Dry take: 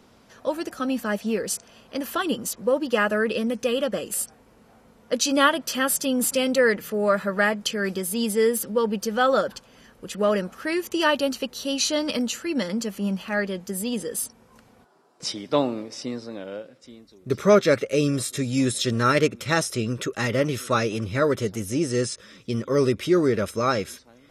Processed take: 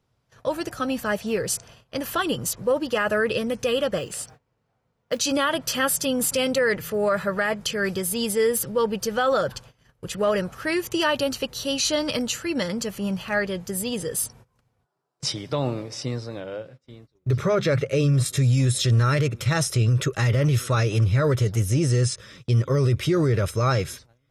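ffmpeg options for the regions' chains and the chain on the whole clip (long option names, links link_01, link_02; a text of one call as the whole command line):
ffmpeg -i in.wav -filter_complex "[0:a]asettb=1/sr,asplit=3[link_01][link_02][link_03];[link_01]atrim=end=3.984[link_04];[link_02]atrim=start=3.98:end=5.2,asetpts=PTS-STARTPTS,afade=type=in:duration=0.004:curve=qsin,afade=type=out:start_time=1.216:duration=0.004:curve=qsin,lowpass=6300,lowshelf=frequency=77:gain=-11.5,acrusher=bits=7:mode=log:mix=0:aa=0.000001[link_05];[link_03]atrim=start=5.196[link_06];[link_04][link_05]acrossfade=duration=0.004:curve1=hsin:curve2=qsin[link_07];[link_07][link_06]acrossfade=duration=0.004:curve1=qsin:curve2=hsin,asettb=1/sr,asplit=3[link_08][link_09][link_10];[link_08]atrim=end=16.404[link_11];[link_09]atrim=start=16.4:end=18.26,asetpts=PTS-STARTPTS,afade=type=in:duration=0.004:curve=qsin,afade=type=out:start_time=1.856:duration=0.004:curve=qsin,highshelf=frequency=5300:gain=-8,bandreject=frequency=50:width_type=h:width=6,bandreject=frequency=100:width_type=h:width=6,bandreject=frequency=150:width_type=h:width=6,bandreject=frequency=200:width_type=h:width=6,bandreject=frequency=250:width_type=h:width=6[link_12];[link_10]atrim=start=18.256[link_13];[link_11][link_12]acrossfade=duration=0.004:curve1=hsin:curve2=qsin[link_14];[link_14][link_13]acrossfade=duration=0.004:curve1=qsin:curve2=hsin,agate=range=-21dB:threshold=-48dB:ratio=16:detection=peak,lowshelf=frequency=170:width_type=q:width=3:gain=7,alimiter=limit=-16dB:level=0:latency=1:release=27,volume=2.5dB" out.wav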